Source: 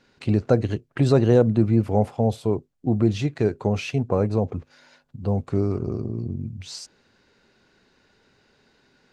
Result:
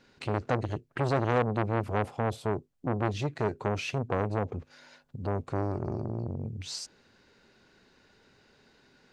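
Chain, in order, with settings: in parallel at -2.5 dB: compressor, threshold -31 dBFS, peak gain reduction 18 dB; on the sum: core saturation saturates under 1100 Hz; gain -5.5 dB

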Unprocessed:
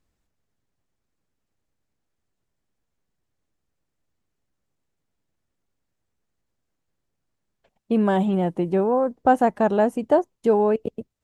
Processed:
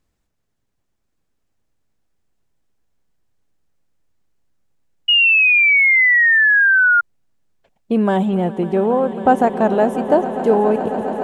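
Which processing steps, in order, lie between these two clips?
swelling echo 0.137 s, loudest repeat 8, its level -16.5 dB; painted sound fall, 5.08–7.01, 1400–2900 Hz -16 dBFS; gain +3.5 dB

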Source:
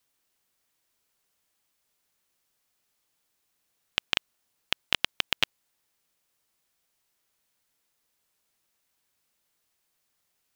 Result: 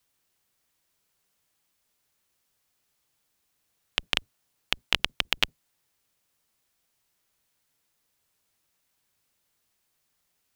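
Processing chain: octaver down 1 oct, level 0 dB; gain +1 dB

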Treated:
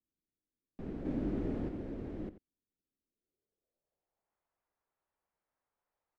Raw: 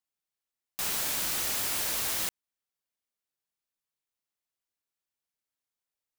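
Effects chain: graphic EQ 125/250/1000/2000 Hz -5/-5/-7/+3 dB; in parallel at +3 dB: limiter -26 dBFS, peak gain reduction 7.5 dB; 1.05–1.69 on the sum: power-law curve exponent 0.5; low-pass sweep 280 Hz -> 990 Hz, 3.02–4.37; outdoor echo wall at 15 m, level -14 dB; gain +2.5 dB

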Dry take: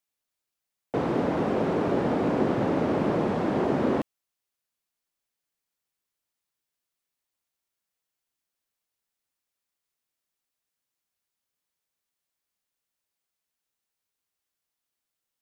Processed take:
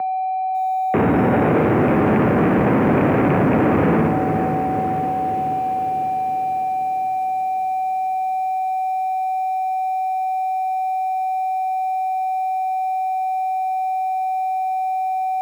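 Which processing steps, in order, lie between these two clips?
rattling part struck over -27 dBFS, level -17 dBFS; flutter echo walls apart 9.7 m, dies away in 0.51 s; limiter -19 dBFS, peak gain reduction 9 dB; tilt shelf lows +8 dB, about 1300 Hz; whine 810 Hz -35 dBFS; on a send: diffused feedback echo 0.516 s, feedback 52%, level -13.5 dB; on the sum: sample leveller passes 5; mistuned SSB -57 Hz 160–2500 Hz; lo-fi delay 0.547 s, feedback 55%, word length 6-bit, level -15 dB; gain -2.5 dB

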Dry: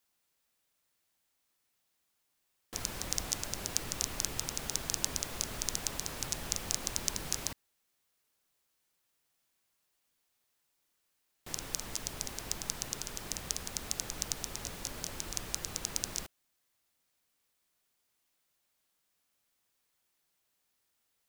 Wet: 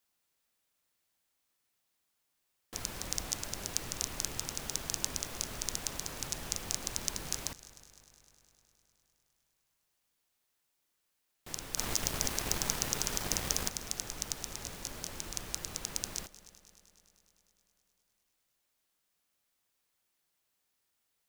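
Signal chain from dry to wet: 11.77–13.69 sample leveller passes 3; multi-head echo 0.102 s, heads second and third, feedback 62%, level -20.5 dB; gain -1.5 dB

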